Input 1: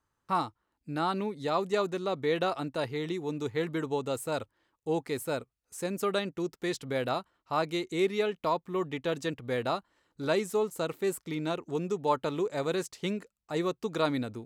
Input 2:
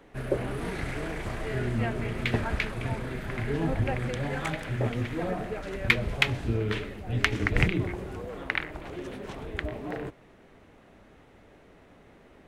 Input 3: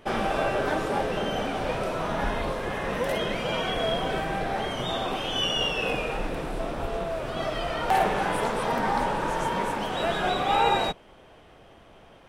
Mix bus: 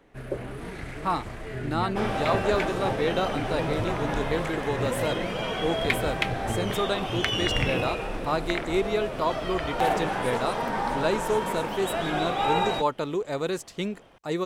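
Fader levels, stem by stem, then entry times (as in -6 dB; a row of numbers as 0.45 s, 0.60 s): +2.0 dB, -4.0 dB, -2.5 dB; 0.75 s, 0.00 s, 1.90 s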